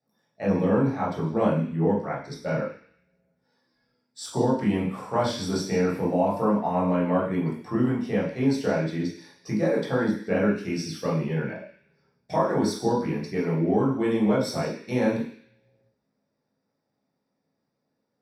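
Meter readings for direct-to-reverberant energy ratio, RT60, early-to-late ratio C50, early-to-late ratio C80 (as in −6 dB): −7.0 dB, 0.50 s, 4.0 dB, 8.5 dB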